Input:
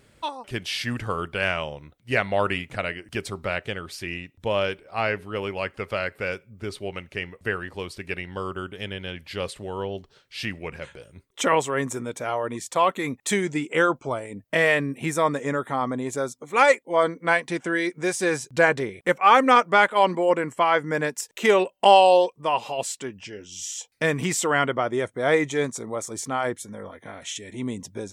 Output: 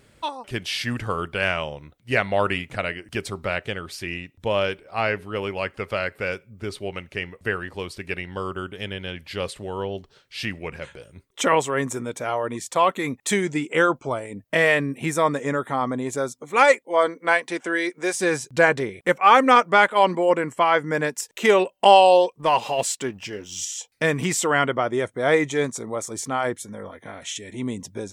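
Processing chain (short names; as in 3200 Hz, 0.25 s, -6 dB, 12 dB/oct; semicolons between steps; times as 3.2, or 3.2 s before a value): 16.85–18.14 HPF 300 Hz 12 dB/oct; 22.39–23.65 sample leveller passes 1; gain +1.5 dB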